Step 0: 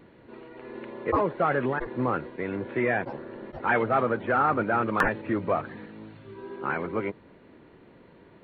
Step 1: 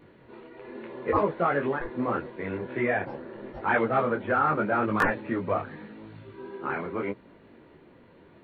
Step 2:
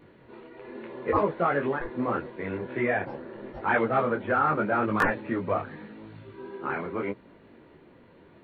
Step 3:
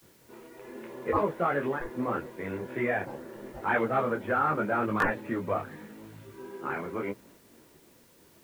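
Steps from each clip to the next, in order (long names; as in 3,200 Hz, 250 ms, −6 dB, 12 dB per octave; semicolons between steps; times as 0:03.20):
micro pitch shift up and down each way 28 cents; level +3 dB
no processing that can be heard
downward expander −49 dBFS; bit-depth reduction 10 bits, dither triangular; level −2.5 dB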